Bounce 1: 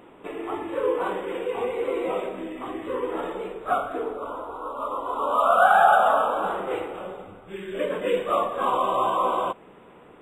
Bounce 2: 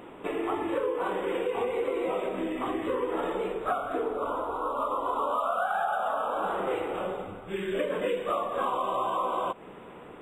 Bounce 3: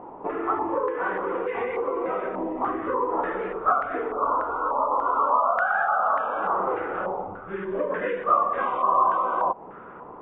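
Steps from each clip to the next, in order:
compression 10:1, threshold -29 dBFS, peak gain reduction 17 dB; trim +3.5 dB
step-sequenced low-pass 3.4 Hz 900–1900 Hz

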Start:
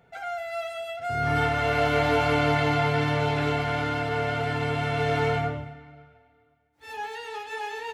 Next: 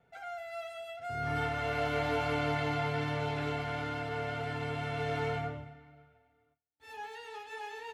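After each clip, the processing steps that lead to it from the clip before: gate with hold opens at -56 dBFS; trim -9 dB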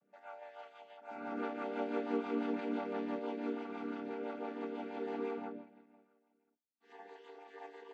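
vocoder on a held chord minor triad, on G3; dynamic bell 390 Hz, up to +4 dB, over -43 dBFS, Q 0.76; rotary cabinet horn 6 Hz; trim -5 dB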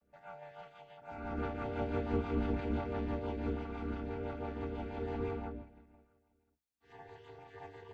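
octave divider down 2 oct, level +2 dB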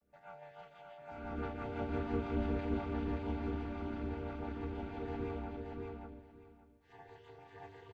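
feedback delay 576 ms, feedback 19%, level -4.5 dB; trim -2.5 dB

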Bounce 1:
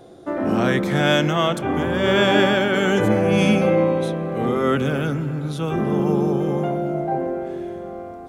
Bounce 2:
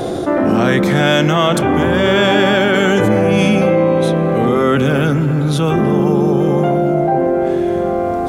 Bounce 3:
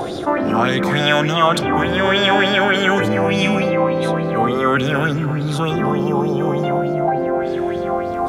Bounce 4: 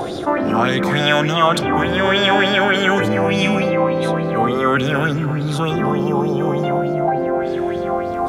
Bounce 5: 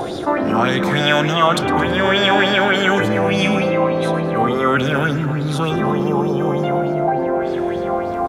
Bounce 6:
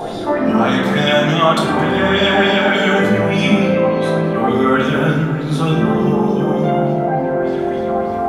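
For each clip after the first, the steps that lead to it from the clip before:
level flattener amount 70%; trim +2.5 dB
sweeping bell 3.4 Hz 870–4900 Hz +13 dB; trim -5.5 dB
no audible change
frequency-shifting echo 109 ms, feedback 47%, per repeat +110 Hz, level -16 dB
simulated room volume 290 m³, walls mixed, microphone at 1.6 m; trim -4 dB

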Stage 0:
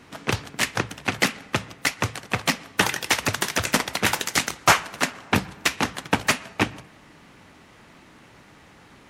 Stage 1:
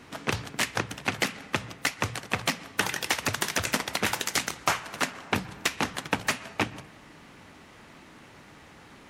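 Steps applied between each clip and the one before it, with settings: hum notches 60/120/180 Hz; compression 5:1, threshold -23 dBFS, peak gain reduction 11.5 dB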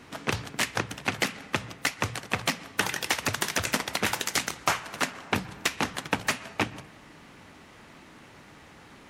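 no audible change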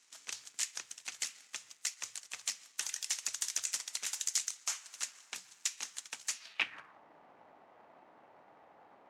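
in parallel at -10 dB: bit crusher 7-bit; on the sum: band-pass sweep 7 kHz -> 720 Hz, 6.33–7.02 s; trim -1.5 dB

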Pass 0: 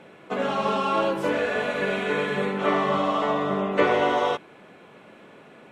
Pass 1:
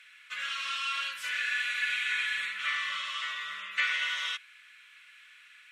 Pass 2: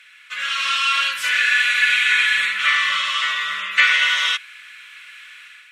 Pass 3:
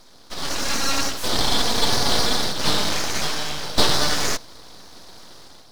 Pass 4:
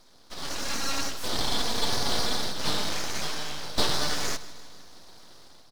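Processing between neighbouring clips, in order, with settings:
inverse Chebyshev high-pass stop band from 850 Hz, stop band 40 dB; trim +3 dB
level rider gain up to 7 dB; trim +7 dB
full-wave rectifier
feedback delay 156 ms, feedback 59%, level -17.5 dB; trim -7.5 dB

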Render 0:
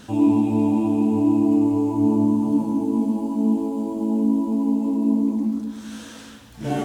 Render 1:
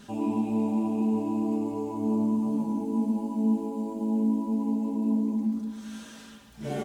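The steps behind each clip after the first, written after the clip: comb 5 ms, depth 64%; trim -7.5 dB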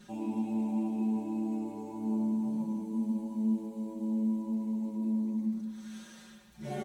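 comb 5.5 ms, depth 99%; trim -8.5 dB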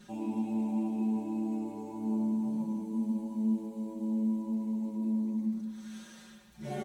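no audible change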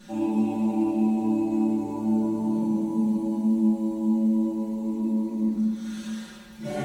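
reverberation RT60 1.1 s, pre-delay 3 ms, DRR -4.5 dB; trim +4 dB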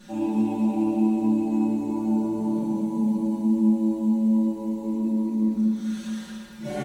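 delay 231 ms -8 dB

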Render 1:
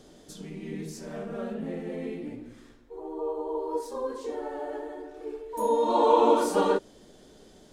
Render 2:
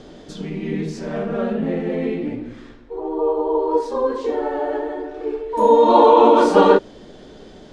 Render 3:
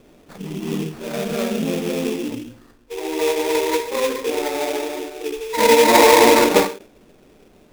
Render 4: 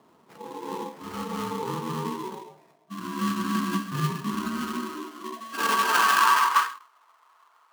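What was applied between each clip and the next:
low-pass 4 kHz 12 dB/octave; loudness maximiser +13 dB; trim -1 dB
spectral noise reduction 9 dB; sample-rate reducer 3 kHz, jitter 20%; endings held to a fixed fall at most 140 dB/s
ring modulator 670 Hz; high-pass sweep 160 Hz -> 1.2 kHz, 4.25–6.65 s; flange 0.9 Hz, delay 2.8 ms, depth 4.1 ms, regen -65%; trim -3 dB

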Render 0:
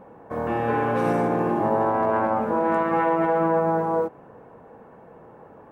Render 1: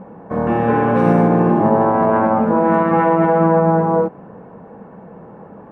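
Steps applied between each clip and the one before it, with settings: low-pass 2.1 kHz 6 dB/octave; peaking EQ 190 Hz +11 dB 0.47 oct; trim +7 dB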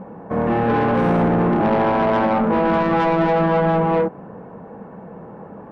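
saturation -14 dBFS, distortion -11 dB; trim +1 dB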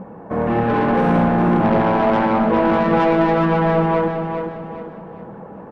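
phaser 1.7 Hz, delay 3.5 ms, feedback 21%; on a send: feedback delay 407 ms, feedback 38%, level -6.5 dB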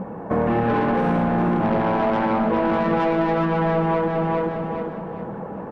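compression 6:1, threshold -22 dBFS, peak gain reduction 9.5 dB; trim +4 dB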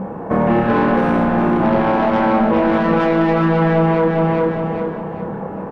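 doubling 31 ms -4.5 dB; trim +4 dB

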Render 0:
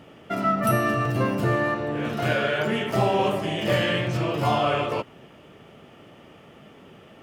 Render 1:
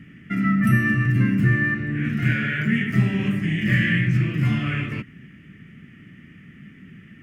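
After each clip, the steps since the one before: FFT filter 100 Hz 0 dB, 190 Hz +4 dB, 290 Hz -4 dB, 520 Hz -26 dB, 890 Hz -30 dB, 1.9 kHz +4 dB, 3.8 kHz -18 dB, 6.5 kHz -13 dB; trim +6 dB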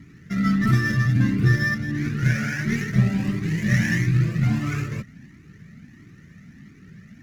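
median filter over 15 samples; Chebyshev shaper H 4 -25 dB, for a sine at -7 dBFS; Shepard-style flanger rising 1.5 Hz; trim +4.5 dB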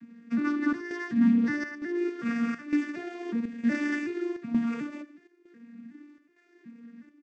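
vocoder on a broken chord major triad, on A#3, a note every 369 ms; square tremolo 1.1 Hz, depth 65%, duty 80%; delay 80 ms -18.5 dB; trim -5.5 dB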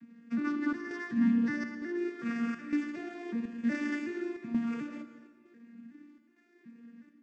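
plate-style reverb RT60 1.4 s, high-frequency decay 0.85×, pre-delay 100 ms, DRR 11 dB; trim -4.5 dB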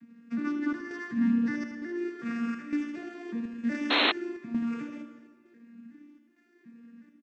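on a send: delay 78 ms -9.5 dB; on the sum: painted sound noise, 3.90–4.12 s, 230–4300 Hz -24 dBFS

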